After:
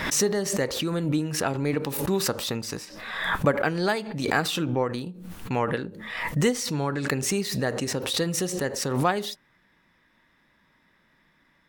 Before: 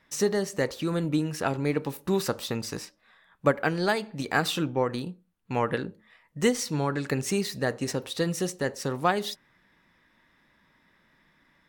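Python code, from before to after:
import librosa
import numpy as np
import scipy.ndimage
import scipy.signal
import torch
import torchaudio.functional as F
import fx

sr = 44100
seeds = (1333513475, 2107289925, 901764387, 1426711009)

y = fx.pre_swell(x, sr, db_per_s=48.0)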